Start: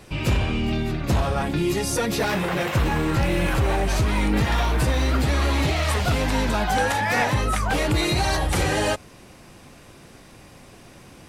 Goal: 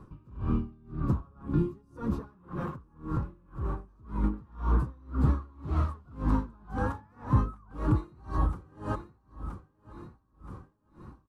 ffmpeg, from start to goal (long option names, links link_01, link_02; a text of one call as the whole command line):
ffmpeg -i in.wav -filter_complex "[0:a]firequalizer=gain_entry='entry(260,0);entry(680,-16);entry(1100,2);entry(2000,-25)':delay=0.05:min_phase=1,asettb=1/sr,asplit=3[link_01][link_02][link_03];[link_01]atrim=end=1.804[link_04];[link_02]atrim=start=1.8:end=4.24,asetpts=PTS-STARTPTS,afade=type=in:duration=0.004:curve=qsin,afade=type=out:start_time=2.436:duration=0.004:curve=qsin,acompressor=threshold=-26dB:ratio=6[link_05];[link_03]atrim=start=4.236[link_06];[link_04][link_05]acrossfade=duration=0.004:curve1=hsin:curve2=qsin[link_07];[link_07][link_06]acrossfade=duration=0.004:curve1=qsin:curve2=hsin,aecho=1:1:973|1946|2919|3892|4865:0.211|0.108|0.055|0.028|0.0143,aeval=exprs='val(0)*pow(10,-32*(0.5-0.5*cos(2*PI*1.9*n/s))/20)':channel_layout=same" out.wav